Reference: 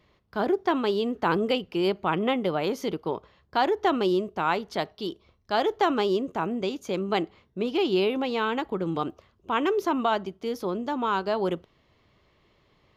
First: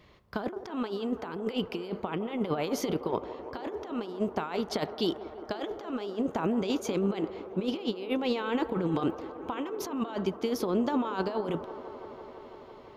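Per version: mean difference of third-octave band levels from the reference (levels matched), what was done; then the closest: 7.0 dB: negative-ratio compressor -30 dBFS, ratio -0.5; on a send: band-limited delay 0.167 s, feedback 85%, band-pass 710 Hz, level -12 dB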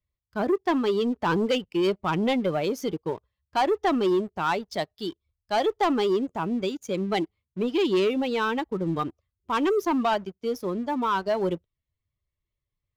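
4.0 dB: per-bin expansion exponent 1.5; sample leveller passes 2; gain -2 dB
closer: second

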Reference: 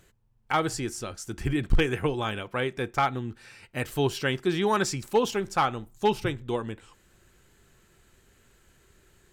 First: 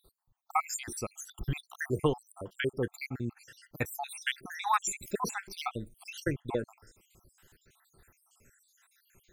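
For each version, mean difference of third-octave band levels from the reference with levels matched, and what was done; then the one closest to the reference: 13.5 dB: random spectral dropouts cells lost 73%; high shelf 9400 Hz +11 dB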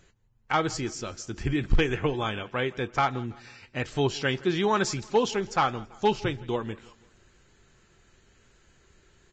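3.5 dB: on a send: feedback echo 0.165 s, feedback 45%, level -22 dB; on the sum: Vorbis 32 kbps 16000 Hz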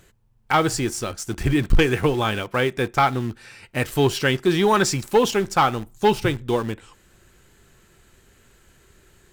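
2.0 dB: in parallel at -10.5 dB: bit-crush 6-bit; on the sum: soft clip -13 dBFS, distortion -18 dB; gain +5.5 dB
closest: third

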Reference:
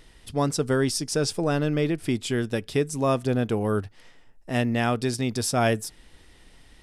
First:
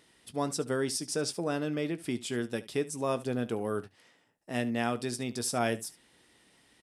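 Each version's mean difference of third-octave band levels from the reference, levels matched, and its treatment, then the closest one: 2.5 dB: HPF 160 Hz 12 dB/oct; bell 9300 Hz +3.5 dB 0.63 oct; on a send: early reflections 17 ms -12.5 dB, 72 ms -18 dB; on the sum: gain -7 dB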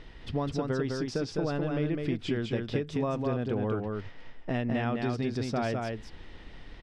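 8.0 dB: compressor 6:1, threshold -33 dBFS, peak gain reduction 14 dB; air absorption 210 m; echo 0.206 s -3.5 dB; gain +5 dB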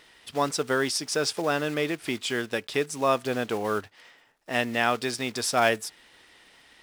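6.0 dB: block floating point 5-bit; HPF 1100 Hz 6 dB/oct; high shelf 5400 Hz -11 dB; gain +6.5 dB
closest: first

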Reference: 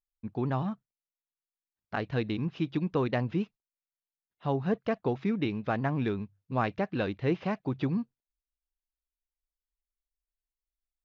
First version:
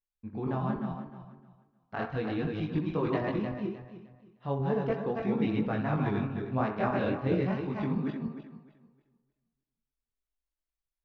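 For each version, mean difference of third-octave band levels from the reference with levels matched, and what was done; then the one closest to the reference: 6.5 dB: regenerating reverse delay 0.153 s, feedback 51%, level -1 dB; on a send: narrowing echo 63 ms, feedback 56%, band-pass 1100 Hz, level -9 dB; on the sum: chorus voices 2, 0.36 Hz, delay 21 ms, depth 2.5 ms; high shelf 3500 Hz -8 dB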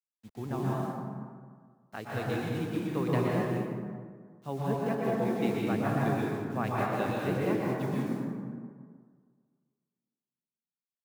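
12.0 dB: HPF 46 Hz 6 dB/oct; requantised 8-bit, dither none; plate-style reverb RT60 2.5 s, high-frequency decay 0.4×, pre-delay 0.11 s, DRR -5.5 dB; three-band expander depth 40%; gain -6 dB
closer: first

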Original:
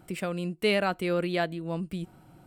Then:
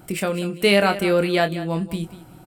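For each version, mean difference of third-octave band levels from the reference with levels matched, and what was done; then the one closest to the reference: 3.5 dB: high shelf 6700 Hz +7 dB; doubler 25 ms -8.5 dB; on a send: feedback echo 0.19 s, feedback 23%, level -14.5 dB; on the sum: gain +7.5 dB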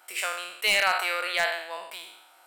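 14.0 dB: spectral trails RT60 0.80 s; Bessel high-pass 1100 Hz, order 4; wavefolder -20.5 dBFS; gain +7 dB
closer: first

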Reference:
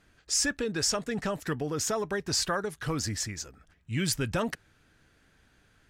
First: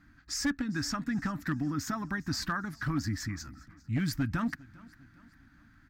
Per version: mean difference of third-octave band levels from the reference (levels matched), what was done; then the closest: 6.0 dB: EQ curve 200 Hz 0 dB, 290 Hz +6 dB, 450 Hz -29 dB, 680 Hz -12 dB, 1300 Hz -1 dB, 1900 Hz -2 dB, 2900 Hz -15 dB, 4600 Hz -8 dB, 9800 Hz -18 dB, 15000 Hz -2 dB; in parallel at +2.5 dB: compressor 6:1, threshold -38 dBFS, peak gain reduction 14 dB; on the sum: one-sided clip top -23 dBFS, bottom -19 dBFS; feedback echo 0.402 s, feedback 46%, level -22.5 dB; gain -2.5 dB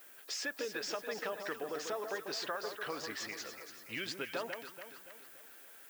12.0 dB: Chebyshev band-pass 490–3400 Hz, order 2; compressor 3:1, threshold -45 dBFS, peak gain reduction 14 dB; added noise violet -62 dBFS; echo with dull and thin repeats by turns 0.143 s, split 1200 Hz, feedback 69%, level -6 dB; gain +5 dB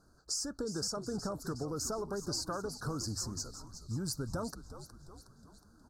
9.0 dB: elliptic band-stop 1400–4500 Hz, stop band 40 dB; notches 50/100 Hz; compressor, threshold -34 dBFS, peak gain reduction 10 dB; frequency-shifting echo 0.365 s, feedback 56%, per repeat -87 Hz, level -12 dB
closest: first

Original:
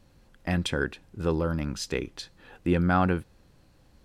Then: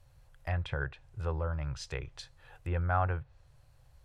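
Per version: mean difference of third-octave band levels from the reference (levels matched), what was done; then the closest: 5.0 dB: treble ducked by the level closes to 2000 Hz, closed at -23.5 dBFS; EQ curve 140 Hz 0 dB, 200 Hz -29 dB, 620 Hz -4 dB, 4900 Hz -7 dB, 11000 Hz -1 dB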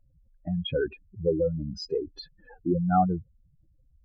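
13.5 dB: spectral contrast raised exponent 3.8; bell 660 Hz +12.5 dB 0.91 oct; gain -2.5 dB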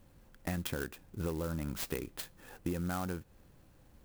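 9.0 dB: compressor 12:1, threshold -30 dBFS, peak gain reduction 12.5 dB; clock jitter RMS 0.055 ms; gain -2 dB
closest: first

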